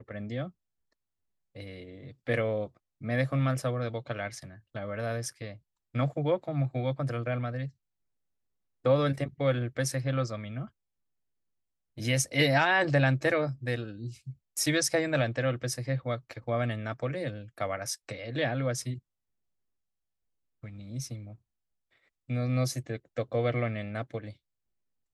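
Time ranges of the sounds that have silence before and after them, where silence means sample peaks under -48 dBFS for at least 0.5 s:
1.55–7.70 s
8.85–10.67 s
11.97–18.99 s
20.63–21.35 s
22.29–24.33 s

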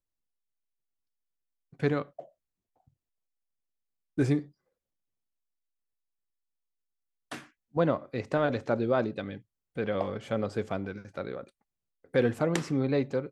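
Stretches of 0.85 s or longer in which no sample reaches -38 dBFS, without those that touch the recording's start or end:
2.20–4.18 s
4.42–7.32 s

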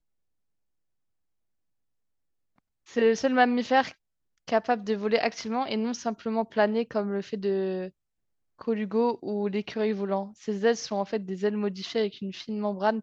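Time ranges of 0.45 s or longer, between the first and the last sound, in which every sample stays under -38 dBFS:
3.91–4.48 s
7.89–8.61 s

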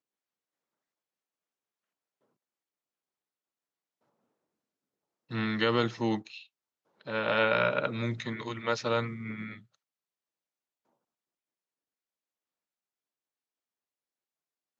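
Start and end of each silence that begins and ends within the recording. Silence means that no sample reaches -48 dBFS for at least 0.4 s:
6.44–7.01 s

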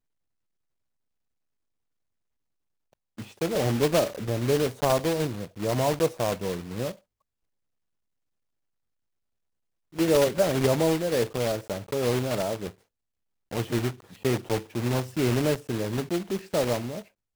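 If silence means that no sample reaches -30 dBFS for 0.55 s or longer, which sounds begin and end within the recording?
3.19–6.91 s
9.99–12.68 s

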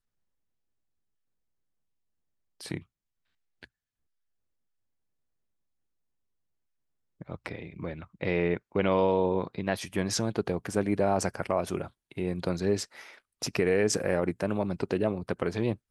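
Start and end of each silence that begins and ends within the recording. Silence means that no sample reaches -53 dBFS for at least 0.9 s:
3.65–7.21 s

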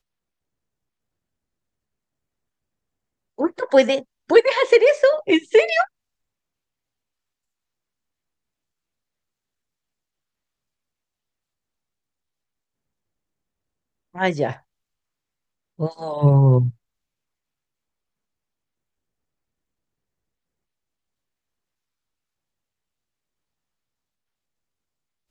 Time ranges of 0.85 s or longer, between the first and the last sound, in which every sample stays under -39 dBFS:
5.86–14.15 s
14.57–15.79 s

